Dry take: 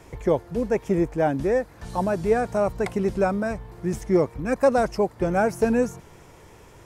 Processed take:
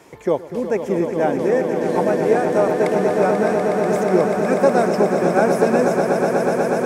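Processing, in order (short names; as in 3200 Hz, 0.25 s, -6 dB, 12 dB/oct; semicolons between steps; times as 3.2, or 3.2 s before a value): HPF 200 Hz 12 dB/oct; on a send: swelling echo 0.122 s, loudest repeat 8, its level -8.5 dB; on the sum: gain +2.5 dB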